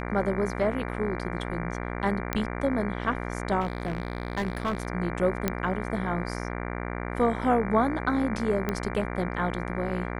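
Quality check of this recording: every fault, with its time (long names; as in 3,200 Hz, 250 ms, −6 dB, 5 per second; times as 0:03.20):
mains buzz 60 Hz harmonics 39 −33 dBFS
0:02.33: click −11 dBFS
0:03.60–0:04.87: clipping −23.5 dBFS
0:05.48: click −10 dBFS
0:08.69: click −14 dBFS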